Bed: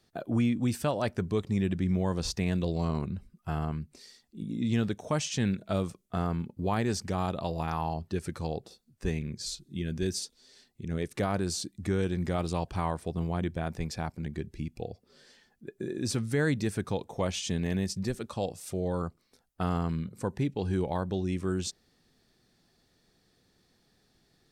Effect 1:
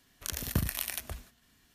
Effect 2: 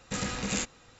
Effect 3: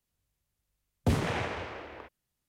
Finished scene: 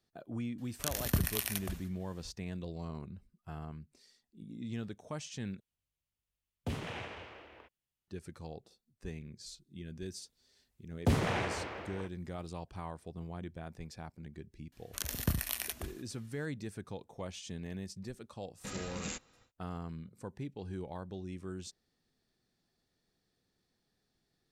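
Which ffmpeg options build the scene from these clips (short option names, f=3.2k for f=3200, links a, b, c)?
-filter_complex "[1:a]asplit=2[a][b];[3:a]asplit=2[c][d];[0:a]volume=-12dB[e];[c]equalizer=f=2.9k:t=o:w=0.65:g=6[f];[e]asplit=2[g][h];[g]atrim=end=5.604[i];[f]atrim=end=2.48,asetpts=PTS-STARTPTS,volume=-11dB[j];[h]atrim=start=8.076[k];[a]atrim=end=1.74,asetpts=PTS-STARTPTS,volume=-0.5dB,afade=t=in:d=0.004:c=hsin,afade=t=out:st=1.736:d=0.004:c=hsin,adelay=580[l];[d]atrim=end=2.48,asetpts=PTS-STARTPTS,volume=-1.5dB,afade=t=in:d=0.004:c=hsin,afade=t=out:st=2.476:d=0.004:c=hsin,adelay=10000[m];[b]atrim=end=1.74,asetpts=PTS-STARTPTS,volume=-2dB,afade=t=in:d=0.004:c=hsin,afade=t=out:st=1.736:d=0.004:c=hsin,adelay=14720[n];[2:a]atrim=end=0.99,asetpts=PTS-STARTPTS,volume=-10dB,afade=t=in:d=0.1,afade=t=out:st=0.89:d=0.1,adelay=18530[o];[i][j]acrossfade=d=0.004:c1=hsin:c2=hsin[p];[p][k]acrossfade=d=0.004:c1=hsin:c2=hsin[q];[q][l][m][n][o]amix=inputs=5:normalize=0"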